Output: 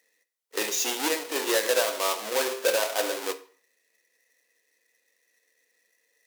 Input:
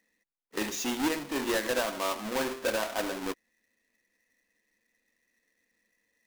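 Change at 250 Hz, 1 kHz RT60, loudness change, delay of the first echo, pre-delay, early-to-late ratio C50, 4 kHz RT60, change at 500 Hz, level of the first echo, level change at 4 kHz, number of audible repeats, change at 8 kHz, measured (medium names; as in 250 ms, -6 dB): -4.0 dB, 0.45 s, +5.0 dB, no echo, 9 ms, 16.0 dB, 0.40 s, +5.5 dB, no echo, +7.0 dB, no echo, +8.5 dB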